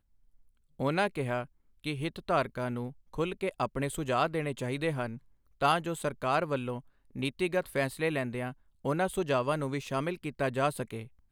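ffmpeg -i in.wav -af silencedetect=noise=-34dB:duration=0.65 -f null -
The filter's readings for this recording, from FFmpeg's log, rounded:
silence_start: 0.00
silence_end: 0.80 | silence_duration: 0.80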